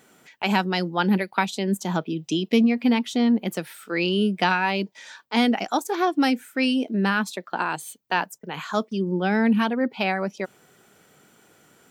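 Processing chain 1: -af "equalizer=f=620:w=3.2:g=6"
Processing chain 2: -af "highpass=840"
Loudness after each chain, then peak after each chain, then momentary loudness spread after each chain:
-23.0, -29.0 LUFS; -5.0, -9.0 dBFS; 9, 9 LU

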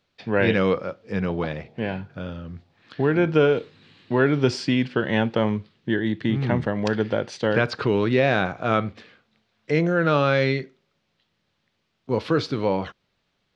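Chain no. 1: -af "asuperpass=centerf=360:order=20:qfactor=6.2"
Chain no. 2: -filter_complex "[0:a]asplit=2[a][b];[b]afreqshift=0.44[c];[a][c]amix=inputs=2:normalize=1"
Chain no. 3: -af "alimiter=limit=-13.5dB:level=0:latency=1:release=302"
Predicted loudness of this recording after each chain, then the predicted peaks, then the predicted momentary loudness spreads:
-33.5, -26.5, -27.0 LUFS; -15.0, -8.5, -13.5 dBFS; 17, 11, 8 LU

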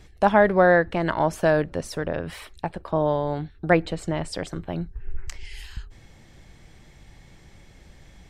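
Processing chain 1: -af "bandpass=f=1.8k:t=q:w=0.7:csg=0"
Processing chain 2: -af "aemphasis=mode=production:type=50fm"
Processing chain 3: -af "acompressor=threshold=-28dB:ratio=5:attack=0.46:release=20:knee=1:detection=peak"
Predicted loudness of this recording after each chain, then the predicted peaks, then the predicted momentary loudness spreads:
-28.5, -23.5, -35.0 LUFS; -7.5, -4.5, -20.5 dBFS; 22, 20, 20 LU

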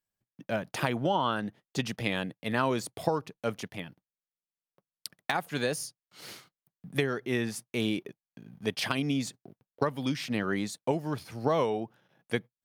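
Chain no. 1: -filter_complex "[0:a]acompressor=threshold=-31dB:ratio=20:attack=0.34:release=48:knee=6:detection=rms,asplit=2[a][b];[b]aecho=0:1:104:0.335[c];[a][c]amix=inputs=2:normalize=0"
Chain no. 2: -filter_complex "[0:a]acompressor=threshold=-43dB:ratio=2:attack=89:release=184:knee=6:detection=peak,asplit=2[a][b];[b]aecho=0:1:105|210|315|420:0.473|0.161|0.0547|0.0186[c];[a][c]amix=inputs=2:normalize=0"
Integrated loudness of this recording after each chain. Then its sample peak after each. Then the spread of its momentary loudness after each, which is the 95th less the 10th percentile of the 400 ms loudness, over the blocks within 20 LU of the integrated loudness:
-40.5, -37.0 LUFS; -25.0, -11.0 dBFS; 12, 11 LU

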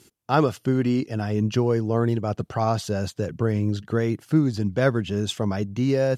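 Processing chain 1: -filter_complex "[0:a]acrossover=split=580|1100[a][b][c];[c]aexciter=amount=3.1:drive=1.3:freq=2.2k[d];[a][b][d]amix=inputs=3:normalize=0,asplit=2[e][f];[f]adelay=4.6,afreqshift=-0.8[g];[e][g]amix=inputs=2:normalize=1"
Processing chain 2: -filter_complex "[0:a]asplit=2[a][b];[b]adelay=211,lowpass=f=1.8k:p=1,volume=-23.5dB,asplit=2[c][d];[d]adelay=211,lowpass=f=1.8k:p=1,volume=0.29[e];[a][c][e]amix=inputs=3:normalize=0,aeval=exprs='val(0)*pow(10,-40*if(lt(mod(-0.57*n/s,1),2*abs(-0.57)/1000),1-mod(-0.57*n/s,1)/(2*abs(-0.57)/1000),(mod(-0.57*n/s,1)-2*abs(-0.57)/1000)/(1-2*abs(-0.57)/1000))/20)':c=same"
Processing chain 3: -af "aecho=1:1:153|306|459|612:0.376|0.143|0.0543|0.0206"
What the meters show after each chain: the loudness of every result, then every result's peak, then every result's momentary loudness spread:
-27.5, -31.5, -23.5 LUFS; -9.0, -12.0, -6.0 dBFS; 5, 19, 4 LU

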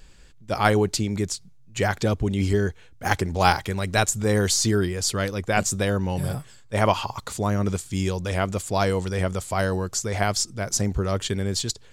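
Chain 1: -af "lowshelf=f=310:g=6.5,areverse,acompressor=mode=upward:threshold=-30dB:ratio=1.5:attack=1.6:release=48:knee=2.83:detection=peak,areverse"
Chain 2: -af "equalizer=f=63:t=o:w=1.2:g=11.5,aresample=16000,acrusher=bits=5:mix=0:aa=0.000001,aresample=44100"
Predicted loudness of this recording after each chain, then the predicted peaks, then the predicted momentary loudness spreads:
-21.5, -22.5 LUFS; -4.0, -4.5 dBFS; 7, 7 LU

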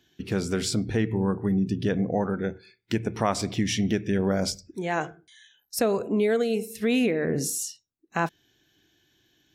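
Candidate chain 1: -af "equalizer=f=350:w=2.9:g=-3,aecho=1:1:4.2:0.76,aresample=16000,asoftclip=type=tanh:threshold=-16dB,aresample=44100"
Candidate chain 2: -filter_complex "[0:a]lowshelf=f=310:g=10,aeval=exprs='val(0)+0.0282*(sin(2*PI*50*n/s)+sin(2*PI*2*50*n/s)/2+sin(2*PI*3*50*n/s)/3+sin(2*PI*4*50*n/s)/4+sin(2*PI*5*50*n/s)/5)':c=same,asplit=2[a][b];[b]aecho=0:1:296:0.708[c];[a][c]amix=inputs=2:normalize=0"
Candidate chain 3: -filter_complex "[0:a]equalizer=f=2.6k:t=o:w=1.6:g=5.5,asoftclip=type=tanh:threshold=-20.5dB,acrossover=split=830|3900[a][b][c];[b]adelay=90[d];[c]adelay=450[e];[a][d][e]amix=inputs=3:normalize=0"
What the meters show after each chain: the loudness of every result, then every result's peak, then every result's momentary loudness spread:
-26.5, -20.0, -29.5 LUFS; -16.0, -4.5, -15.5 dBFS; 9, 12, 9 LU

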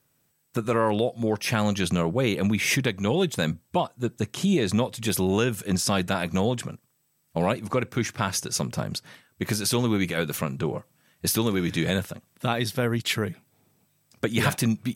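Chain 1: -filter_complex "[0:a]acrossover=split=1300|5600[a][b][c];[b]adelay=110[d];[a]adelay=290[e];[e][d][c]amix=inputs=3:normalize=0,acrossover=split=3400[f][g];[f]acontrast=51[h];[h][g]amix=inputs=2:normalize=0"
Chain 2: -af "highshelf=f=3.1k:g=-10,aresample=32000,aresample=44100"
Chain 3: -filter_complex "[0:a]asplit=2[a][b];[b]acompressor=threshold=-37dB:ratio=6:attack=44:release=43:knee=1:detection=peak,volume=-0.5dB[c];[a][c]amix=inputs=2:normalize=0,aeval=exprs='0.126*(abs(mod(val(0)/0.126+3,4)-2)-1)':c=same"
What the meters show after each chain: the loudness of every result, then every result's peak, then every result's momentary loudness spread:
-21.5, -27.0, -26.0 LUFS; -6.0, -9.5, -18.0 dBFS; 9, 8, 7 LU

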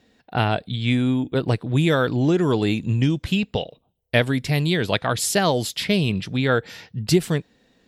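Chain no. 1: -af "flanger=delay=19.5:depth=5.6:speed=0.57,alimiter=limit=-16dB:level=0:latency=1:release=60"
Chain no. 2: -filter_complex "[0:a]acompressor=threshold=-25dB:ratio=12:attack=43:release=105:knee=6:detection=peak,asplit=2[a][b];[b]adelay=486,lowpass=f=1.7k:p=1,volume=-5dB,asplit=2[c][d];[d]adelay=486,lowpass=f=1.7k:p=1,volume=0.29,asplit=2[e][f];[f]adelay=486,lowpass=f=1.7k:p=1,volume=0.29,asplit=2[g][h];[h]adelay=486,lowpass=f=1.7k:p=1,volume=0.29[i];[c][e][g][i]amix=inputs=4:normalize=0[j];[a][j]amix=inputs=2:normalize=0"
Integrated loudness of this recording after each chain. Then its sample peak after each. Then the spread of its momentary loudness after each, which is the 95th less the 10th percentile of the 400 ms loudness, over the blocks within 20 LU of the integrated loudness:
-27.0, -26.0 LUFS; -16.0, -9.5 dBFS; 6, 5 LU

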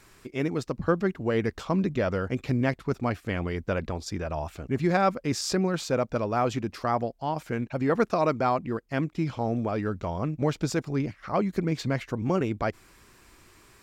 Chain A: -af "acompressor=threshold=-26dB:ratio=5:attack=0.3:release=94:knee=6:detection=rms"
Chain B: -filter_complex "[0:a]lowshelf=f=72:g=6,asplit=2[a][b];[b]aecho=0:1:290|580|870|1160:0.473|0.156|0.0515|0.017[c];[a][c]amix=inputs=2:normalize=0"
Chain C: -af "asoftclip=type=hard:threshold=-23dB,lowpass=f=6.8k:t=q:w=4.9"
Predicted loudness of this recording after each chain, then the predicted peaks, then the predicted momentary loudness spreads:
-34.5, -27.0, -29.5 LUFS; -22.5, -9.0, -11.5 dBFS; 4, 7, 5 LU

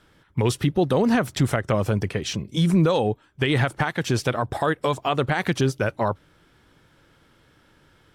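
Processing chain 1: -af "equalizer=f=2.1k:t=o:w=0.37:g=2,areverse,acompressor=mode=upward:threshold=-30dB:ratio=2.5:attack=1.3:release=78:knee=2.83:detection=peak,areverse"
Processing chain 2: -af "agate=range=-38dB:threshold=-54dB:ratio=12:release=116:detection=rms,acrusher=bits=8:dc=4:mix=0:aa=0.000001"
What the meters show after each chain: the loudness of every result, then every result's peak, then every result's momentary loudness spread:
-23.0, -23.5 LUFS; -10.0, -11.0 dBFS; 7, 7 LU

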